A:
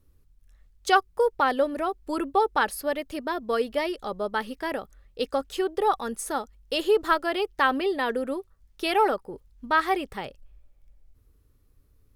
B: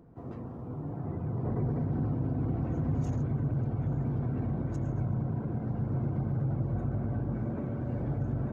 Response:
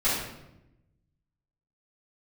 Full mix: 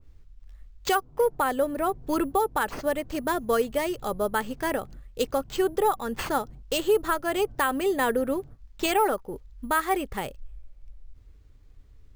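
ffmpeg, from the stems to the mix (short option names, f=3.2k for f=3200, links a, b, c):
-filter_complex "[0:a]acrusher=samples=4:mix=1:aa=0.000001,adynamicequalizer=threshold=0.0126:dfrequency=2100:dqfactor=0.7:tfrequency=2100:tqfactor=0.7:attack=5:release=100:ratio=0.375:range=2:mode=cutabove:tftype=highshelf,volume=2.5dB,asplit=2[a][b];[1:a]acompressor=threshold=-34dB:ratio=6,adelay=350,volume=-15.5dB[c];[b]apad=whole_len=391497[d];[c][d]sidechaingate=range=-33dB:threshold=-46dB:ratio=16:detection=peak[e];[a][e]amix=inputs=2:normalize=0,lowshelf=f=77:g=9,alimiter=limit=-14dB:level=0:latency=1:release=346"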